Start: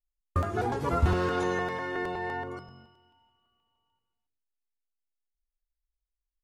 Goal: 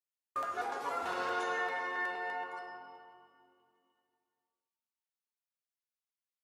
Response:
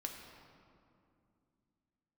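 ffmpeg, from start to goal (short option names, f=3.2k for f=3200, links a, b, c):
-filter_complex "[0:a]highpass=720[a];[1:a]atrim=start_sample=2205[b];[a][b]afir=irnorm=-1:irlink=0,volume=-1dB"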